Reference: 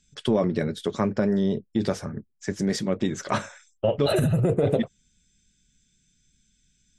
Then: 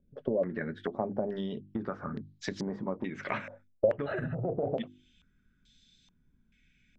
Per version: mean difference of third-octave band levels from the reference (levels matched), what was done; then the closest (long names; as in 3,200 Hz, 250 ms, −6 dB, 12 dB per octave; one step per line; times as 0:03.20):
6.5 dB: parametric band 260 Hz +5 dB 0.34 octaves
mains-hum notches 50/100/150/200/250/300/350 Hz
downward compressor 6 to 1, threshold −33 dBFS, peak gain reduction 16 dB
low-pass on a step sequencer 2.3 Hz 560–4,000 Hz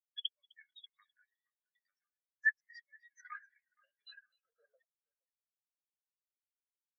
22.5 dB: downward compressor 8 to 1, threshold −31 dBFS, peak gain reduction 14.5 dB
high-pass filter sweep 1,900 Hz → 680 Hz, 0:04.03–0:05.59
on a send: echo with a time of its own for lows and highs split 2,100 Hz, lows 469 ms, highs 256 ms, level −7 dB
on the sum: every bin expanded away from the loudest bin 4 to 1
level −1.5 dB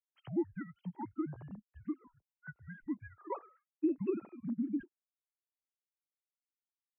16.0 dB: three sine waves on the formant tracks
downward compressor 6 to 1, threshold −21 dBFS, peak gain reduction 7.5 dB
single-sideband voice off tune −240 Hz 510–2,800 Hz
every bin expanded away from the loudest bin 1.5 to 1
level −5.5 dB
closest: first